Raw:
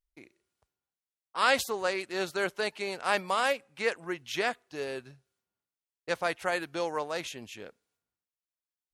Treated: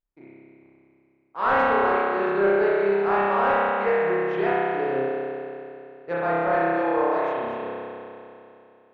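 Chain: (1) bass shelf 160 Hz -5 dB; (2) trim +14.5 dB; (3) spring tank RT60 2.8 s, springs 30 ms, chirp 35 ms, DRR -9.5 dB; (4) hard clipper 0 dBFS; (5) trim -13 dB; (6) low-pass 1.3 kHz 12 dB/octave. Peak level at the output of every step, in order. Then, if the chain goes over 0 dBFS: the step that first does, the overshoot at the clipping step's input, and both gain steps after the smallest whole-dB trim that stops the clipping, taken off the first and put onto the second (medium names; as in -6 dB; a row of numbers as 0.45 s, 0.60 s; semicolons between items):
-9.5 dBFS, +5.0 dBFS, +9.5 dBFS, 0.0 dBFS, -13.0 dBFS, -12.5 dBFS; step 2, 9.5 dB; step 2 +4.5 dB, step 5 -3 dB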